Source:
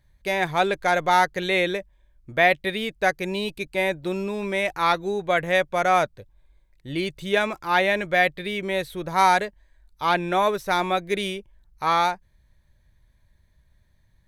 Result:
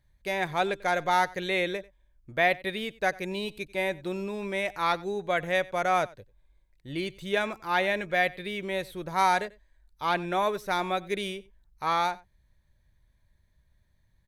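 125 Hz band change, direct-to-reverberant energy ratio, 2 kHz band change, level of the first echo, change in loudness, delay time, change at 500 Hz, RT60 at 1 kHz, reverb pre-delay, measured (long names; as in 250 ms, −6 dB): −5.5 dB, no reverb audible, −5.5 dB, −22.0 dB, −5.5 dB, 93 ms, −5.5 dB, no reverb audible, no reverb audible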